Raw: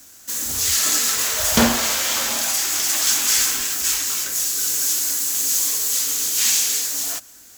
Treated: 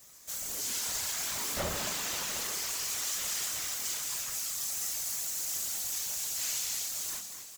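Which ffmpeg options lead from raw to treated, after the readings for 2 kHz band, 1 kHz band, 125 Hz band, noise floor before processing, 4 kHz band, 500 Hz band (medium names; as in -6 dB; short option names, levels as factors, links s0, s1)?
-14.0 dB, -14.0 dB, -12.5 dB, -46 dBFS, -14.0 dB, -13.0 dB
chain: -filter_complex "[0:a]acompressor=threshold=0.0355:ratio=1.5,asoftclip=type=hard:threshold=0.0841,aeval=exprs='val(0)*sin(2*PI*350*n/s)':c=same,asplit=7[s0][s1][s2][s3][s4][s5][s6];[s1]adelay=229,afreqshift=75,volume=0.398[s7];[s2]adelay=458,afreqshift=150,volume=0.204[s8];[s3]adelay=687,afreqshift=225,volume=0.104[s9];[s4]adelay=916,afreqshift=300,volume=0.0531[s10];[s5]adelay=1145,afreqshift=375,volume=0.0269[s11];[s6]adelay=1374,afreqshift=450,volume=0.0138[s12];[s0][s7][s8][s9][s10][s11][s12]amix=inputs=7:normalize=0,flanger=delay=19.5:depth=6:speed=1.4,afftfilt=real='hypot(re,im)*cos(2*PI*random(0))':imag='hypot(re,im)*sin(2*PI*random(1))':win_size=512:overlap=0.75,volume=1.41"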